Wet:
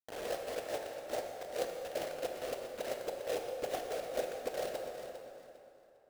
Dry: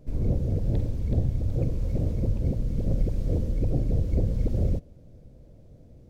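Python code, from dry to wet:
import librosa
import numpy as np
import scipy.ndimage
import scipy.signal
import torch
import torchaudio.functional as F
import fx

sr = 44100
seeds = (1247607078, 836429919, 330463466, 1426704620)

y = fx.dereverb_blind(x, sr, rt60_s=0.64)
y = scipy.signal.sosfilt(scipy.signal.ellip(4, 1.0, 40, 820.0, 'lowpass', fs=sr, output='sos'), y)
y = fx.dereverb_blind(y, sr, rt60_s=1.3)
y = scipy.signal.sosfilt(scipy.signal.butter(4, 650.0, 'highpass', fs=sr, output='sos'), y)
y = fx.quant_companded(y, sr, bits=4)
y = fx.echo_feedback(y, sr, ms=402, feedback_pct=25, wet_db=-11.0)
y = fx.rev_plate(y, sr, seeds[0], rt60_s=3.0, hf_ratio=0.65, predelay_ms=0, drr_db=2.0)
y = y * 10.0 ** (10.0 / 20.0)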